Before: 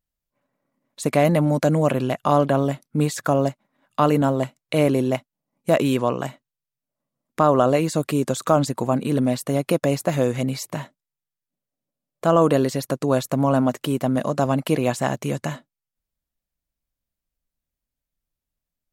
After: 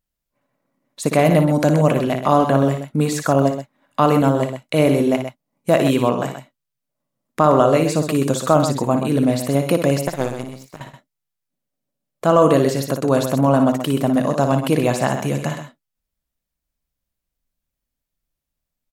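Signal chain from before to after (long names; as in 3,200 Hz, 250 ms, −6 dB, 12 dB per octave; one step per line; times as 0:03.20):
0:10.03–0:10.81: power curve on the samples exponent 2
multi-tap delay 58/128 ms −8/−9 dB
level +2.5 dB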